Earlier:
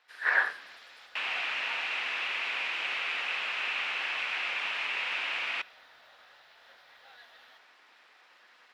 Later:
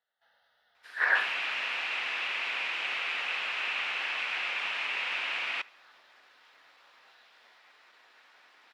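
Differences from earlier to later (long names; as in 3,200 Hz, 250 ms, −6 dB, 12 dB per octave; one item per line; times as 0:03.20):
speech: entry +0.75 s
first sound −9.5 dB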